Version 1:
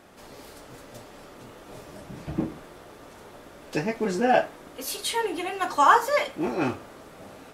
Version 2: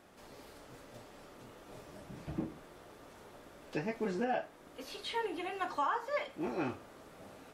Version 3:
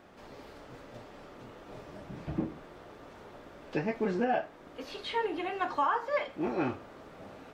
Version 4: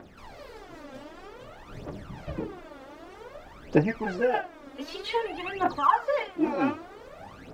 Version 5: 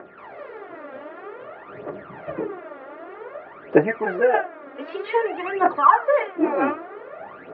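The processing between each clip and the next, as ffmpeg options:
-filter_complex "[0:a]acrossover=split=4400[s0][s1];[s1]acompressor=threshold=0.00224:ratio=4:attack=1:release=60[s2];[s0][s2]amix=inputs=2:normalize=0,alimiter=limit=0.158:level=0:latency=1:release=457,volume=0.398"
-af "equalizer=f=11000:w=0.6:g=-14.5,volume=1.78"
-af "aphaser=in_gain=1:out_gain=1:delay=3.8:decay=0.75:speed=0.53:type=triangular,volume=1.12"
-af "aeval=exprs='val(0)+0.001*sin(2*PI*1400*n/s)':c=same,highpass=220,equalizer=f=240:t=q:w=4:g=-5,equalizer=f=400:t=q:w=4:g=7,equalizer=f=640:t=q:w=4:g=6,equalizer=f=1200:t=q:w=4:g=5,equalizer=f=1800:t=q:w=4:g=5,lowpass=f=2500:w=0.5412,lowpass=f=2500:w=1.3066,volume=1.58"

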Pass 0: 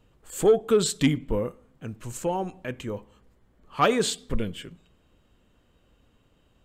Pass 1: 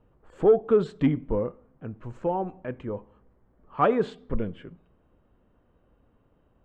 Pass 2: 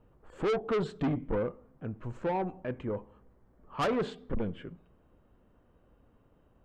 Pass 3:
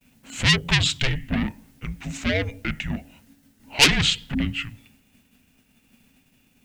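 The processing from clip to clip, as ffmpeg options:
-af "lowpass=1200,lowshelf=f=370:g=-3.5,volume=1.26"
-af "asoftclip=type=tanh:threshold=0.0531"
-af "agate=range=0.0224:threshold=0.00126:ratio=3:detection=peak,aexciter=amount=11.8:drive=4.8:freq=2100,afreqshift=-280,volume=2"

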